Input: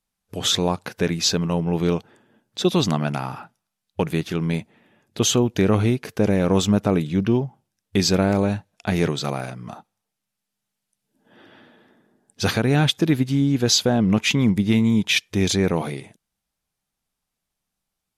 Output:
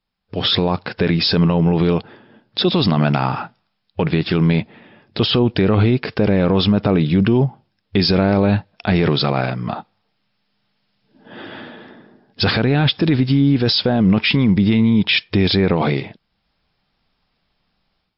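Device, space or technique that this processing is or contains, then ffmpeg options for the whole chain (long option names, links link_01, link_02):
low-bitrate web radio: -af "dynaudnorm=framelen=300:gausssize=3:maxgain=11.5dB,alimiter=limit=-11dB:level=0:latency=1:release=27,volume=4.5dB" -ar 12000 -c:a libmp3lame -b:a 48k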